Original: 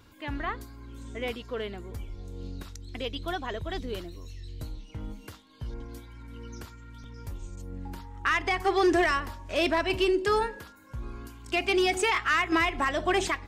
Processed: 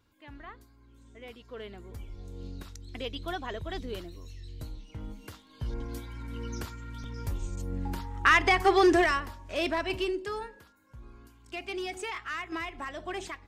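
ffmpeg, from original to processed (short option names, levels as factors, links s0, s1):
-af "volume=1.78,afade=t=in:st=1.27:d=0.97:silence=0.281838,afade=t=in:st=5.15:d=0.93:silence=0.421697,afade=t=out:st=8.39:d=0.94:silence=0.354813,afade=t=out:st=9.91:d=0.42:silence=0.446684"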